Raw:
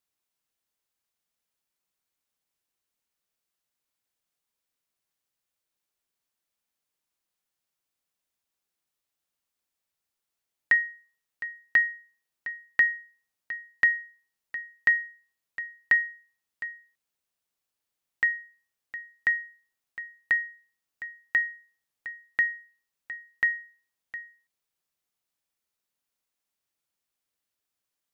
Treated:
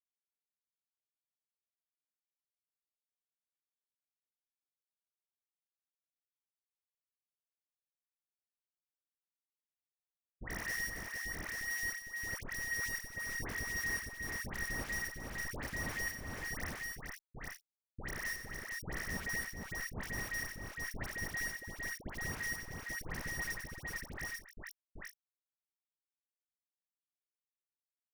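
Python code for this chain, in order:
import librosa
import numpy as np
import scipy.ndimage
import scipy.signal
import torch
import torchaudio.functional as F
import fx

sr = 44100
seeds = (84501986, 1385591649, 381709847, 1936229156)

p1 = fx.spec_swells(x, sr, rise_s=0.76)
p2 = fx.chorus_voices(p1, sr, voices=2, hz=0.24, base_ms=13, depth_ms=2.9, mix_pct=60)
p3 = fx.level_steps(p2, sr, step_db=14)
p4 = fx.schmitt(p3, sr, flips_db=-37.5)
p5 = fx.low_shelf(p4, sr, hz=82.0, db=-6.5)
p6 = fx.dispersion(p5, sr, late='highs', ms=99.0, hz=1300.0)
p7 = p6 + fx.echo_multitap(p6, sr, ms=(93, 185, 277, 458, 841, 879), db=(-9.0, -18.5, -12.5, -3.5, -3.0, -17.5), dry=0)
y = p7 * librosa.db_to_amplitude(2.0)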